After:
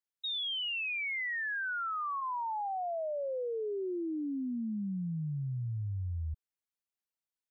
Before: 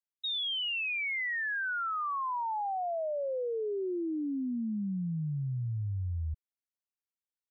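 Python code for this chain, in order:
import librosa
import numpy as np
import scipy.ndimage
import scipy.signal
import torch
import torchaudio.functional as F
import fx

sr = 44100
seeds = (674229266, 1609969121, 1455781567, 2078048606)

y = fx.highpass(x, sr, hz=fx.line((2.2, 730.0), (2.68, 270.0)), slope=24, at=(2.2, 2.68), fade=0.02)
y = y * librosa.db_to_amplitude(-2.0)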